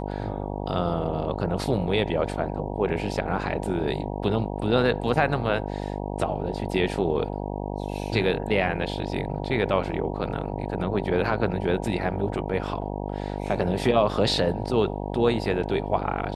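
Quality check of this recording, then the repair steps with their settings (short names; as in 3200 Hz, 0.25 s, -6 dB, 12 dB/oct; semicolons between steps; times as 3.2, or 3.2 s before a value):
buzz 50 Hz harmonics 19 -31 dBFS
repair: de-hum 50 Hz, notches 19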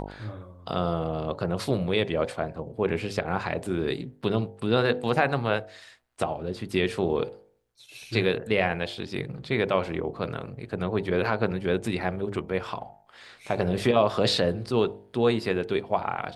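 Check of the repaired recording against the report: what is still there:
none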